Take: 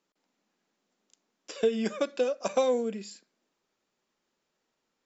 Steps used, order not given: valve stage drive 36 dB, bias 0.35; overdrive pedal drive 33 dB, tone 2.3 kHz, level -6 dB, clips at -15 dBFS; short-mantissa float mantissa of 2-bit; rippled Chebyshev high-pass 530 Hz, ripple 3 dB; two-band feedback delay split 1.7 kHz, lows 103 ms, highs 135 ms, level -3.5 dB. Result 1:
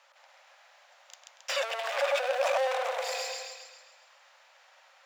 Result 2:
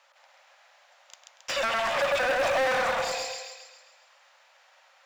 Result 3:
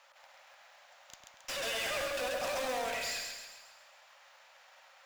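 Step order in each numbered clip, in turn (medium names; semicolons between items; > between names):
two-band feedback delay > short-mantissa float > valve stage > overdrive pedal > rippled Chebyshev high-pass; two-band feedback delay > valve stage > rippled Chebyshev high-pass > short-mantissa float > overdrive pedal; rippled Chebyshev high-pass > overdrive pedal > valve stage > two-band feedback delay > short-mantissa float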